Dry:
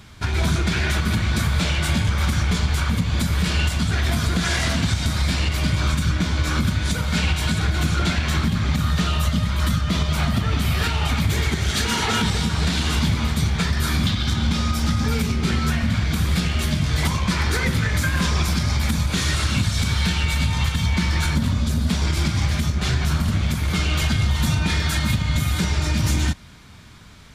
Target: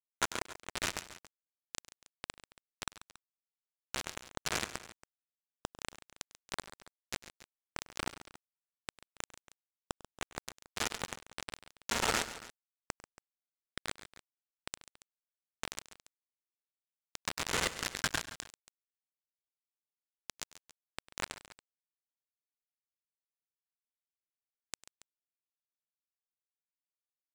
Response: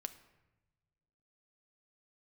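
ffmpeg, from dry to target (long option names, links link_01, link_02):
-filter_complex "[0:a]acrossover=split=100|1300[link_01][link_02][link_03];[link_01]acompressor=threshold=-21dB:ratio=4[link_04];[link_02]acompressor=threshold=-34dB:ratio=4[link_05];[link_03]acompressor=threshold=-36dB:ratio=4[link_06];[link_04][link_05][link_06]amix=inputs=3:normalize=0,lowshelf=frequency=190:gain=-2.5,afwtdn=0.0224,acrossover=split=230 2900:gain=0.0708 1 0.126[link_07][link_08][link_09];[link_07][link_08][link_09]amix=inputs=3:normalize=0,aresample=16000,acrusher=bits=4:mix=0:aa=0.000001,aresample=44100,asoftclip=type=hard:threshold=-30dB,areverse,acompressor=mode=upward:threshold=-48dB:ratio=2.5,areverse,aecho=1:1:99|138|279:0.119|0.178|0.119,volume=10dB"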